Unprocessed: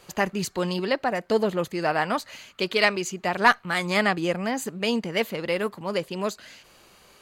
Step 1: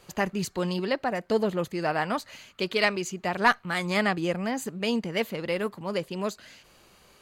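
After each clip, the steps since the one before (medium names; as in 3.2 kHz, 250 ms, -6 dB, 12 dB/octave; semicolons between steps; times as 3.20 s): bass shelf 240 Hz +4.5 dB; trim -3.5 dB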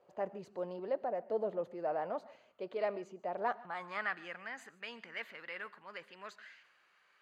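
transient shaper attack -2 dB, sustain +4 dB; band-pass sweep 590 Hz -> 1.7 kHz, 3.48–4.15 s; on a send at -19 dB: reverberation, pre-delay 46 ms; on the sum: trim -4 dB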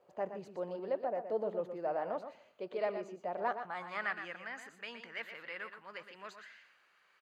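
delay 119 ms -9 dB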